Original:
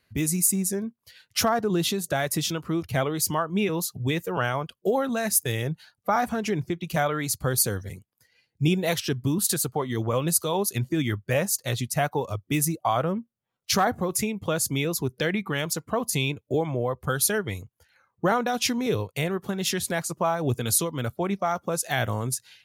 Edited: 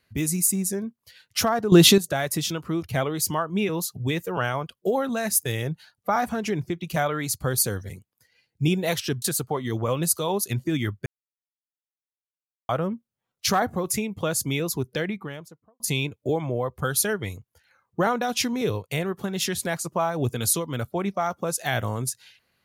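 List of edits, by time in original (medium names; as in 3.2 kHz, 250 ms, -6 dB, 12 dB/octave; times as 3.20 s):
1.72–1.98 s: gain +11.5 dB
9.22–9.47 s: delete
11.31–12.94 s: mute
15.02–16.05 s: studio fade out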